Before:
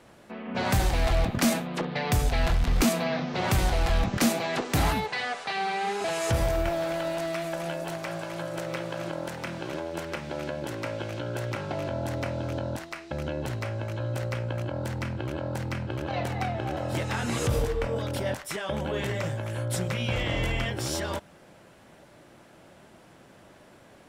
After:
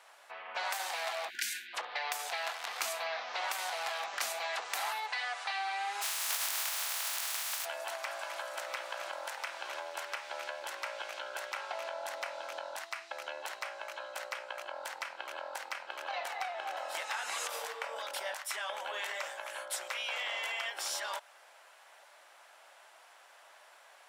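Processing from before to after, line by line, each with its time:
1.30–1.74 s: spectral selection erased 390–1400 Hz
6.01–7.64 s: spectral contrast reduction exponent 0.15
whole clip: high-pass 740 Hz 24 dB/octave; compression 3:1, threshold -34 dBFS

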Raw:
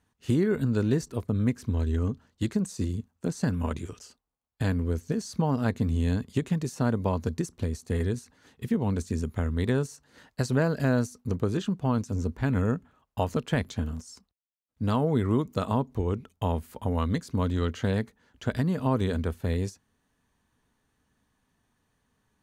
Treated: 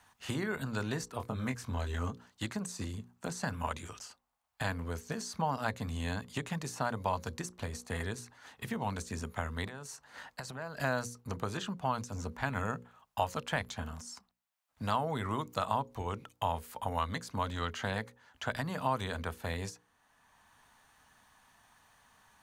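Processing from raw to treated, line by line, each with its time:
1.17–2.11 s: doubling 23 ms -6 dB
9.67–10.81 s: compression 16:1, threshold -34 dBFS
whole clip: resonant low shelf 550 Hz -10.5 dB, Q 1.5; hum notches 60/120/180/240/300/360/420/480/540 Hz; three bands compressed up and down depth 40%

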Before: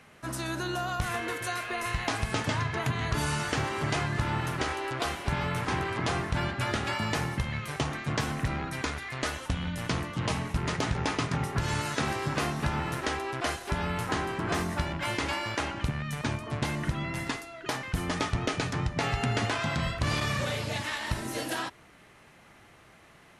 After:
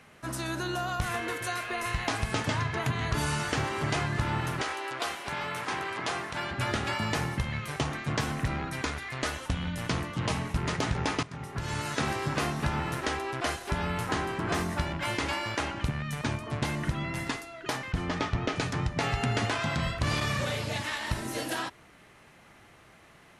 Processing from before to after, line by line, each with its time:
4.61–6.51 s: high-pass 540 Hz 6 dB/octave
11.23–12.01 s: fade in, from -16 dB
17.92–18.56 s: distance through air 95 m

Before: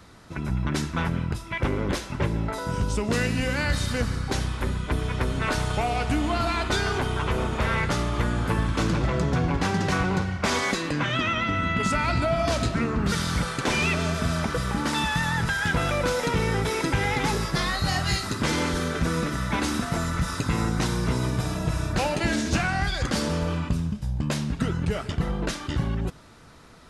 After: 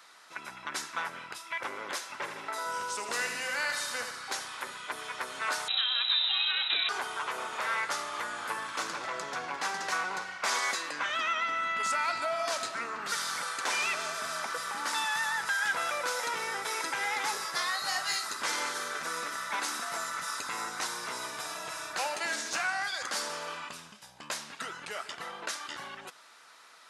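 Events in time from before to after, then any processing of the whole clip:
2.14–4.11 s: feedback delay 79 ms, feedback 55%, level -7.5 dB
5.68–6.89 s: frequency inversion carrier 3.9 kHz
whole clip: high-pass 1 kHz 12 dB/octave; dynamic bell 2.9 kHz, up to -6 dB, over -42 dBFS, Q 1.1

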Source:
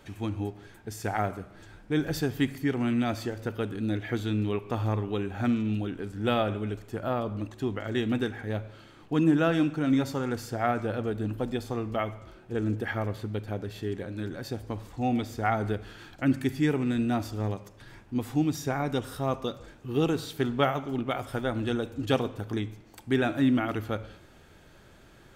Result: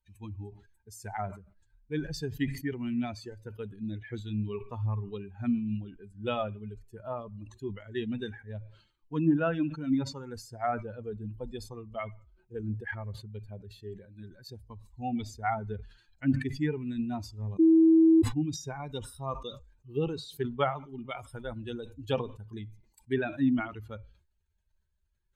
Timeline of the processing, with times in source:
17.59–18.22 s: bleep 324 Hz -15.5 dBFS
whole clip: expander on every frequency bin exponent 2; low-pass that closes with the level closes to 2.6 kHz, closed at -25 dBFS; decay stretcher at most 110 dB/s

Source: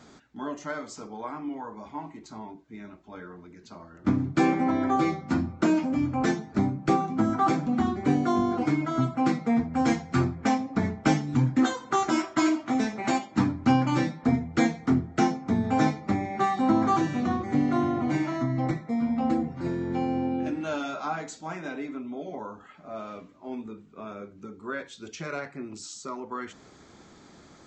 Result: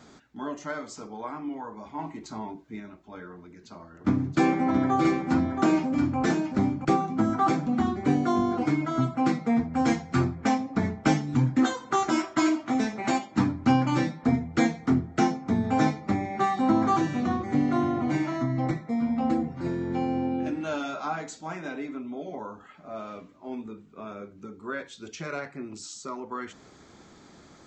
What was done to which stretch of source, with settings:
1.99–2.80 s: gain +4.5 dB
3.33–6.85 s: delay 676 ms -6 dB

